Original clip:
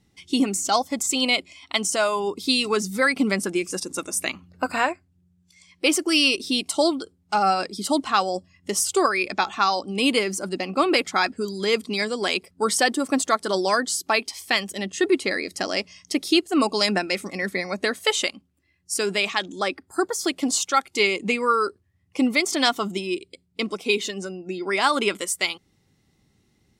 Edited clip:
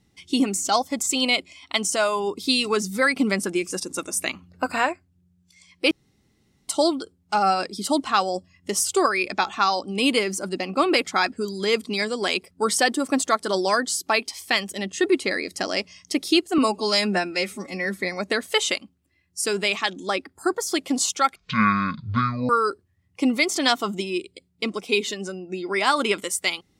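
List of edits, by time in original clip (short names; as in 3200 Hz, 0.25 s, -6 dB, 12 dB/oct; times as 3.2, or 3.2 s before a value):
5.91–6.68 room tone
16.58–17.53 stretch 1.5×
20.88–21.46 speed 51%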